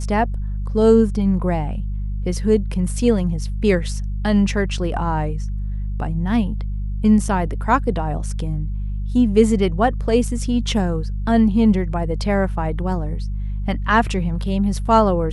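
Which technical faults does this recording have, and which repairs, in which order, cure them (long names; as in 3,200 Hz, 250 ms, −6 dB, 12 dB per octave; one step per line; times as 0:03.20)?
mains hum 50 Hz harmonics 4 −24 dBFS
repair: hum removal 50 Hz, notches 4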